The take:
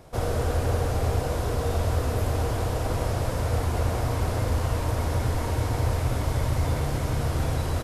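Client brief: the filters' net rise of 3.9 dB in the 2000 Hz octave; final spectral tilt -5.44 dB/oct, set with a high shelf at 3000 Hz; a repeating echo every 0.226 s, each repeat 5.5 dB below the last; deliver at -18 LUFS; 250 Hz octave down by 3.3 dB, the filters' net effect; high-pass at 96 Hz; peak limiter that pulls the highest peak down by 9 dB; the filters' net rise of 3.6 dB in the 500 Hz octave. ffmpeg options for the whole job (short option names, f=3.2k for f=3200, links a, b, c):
-af "highpass=96,equalizer=f=250:t=o:g=-6.5,equalizer=f=500:t=o:g=5.5,equalizer=f=2k:t=o:g=6.5,highshelf=f=3k:g=-5,alimiter=limit=-23dB:level=0:latency=1,aecho=1:1:226|452|678|904|1130|1356|1582:0.531|0.281|0.149|0.079|0.0419|0.0222|0.0118,volume=12dB"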